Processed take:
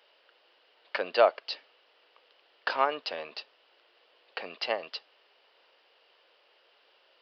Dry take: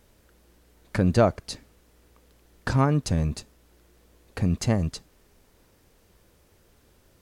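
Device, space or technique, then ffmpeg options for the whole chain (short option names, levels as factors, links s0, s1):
musical greeting card: -af "aresample=11025,aresample=44100,highpass=f=520:w=0.5412,highpass=f=520:w=1.3066,equalizer=f=2900:t=o:w=0.3:g=10.5,volume=1.12"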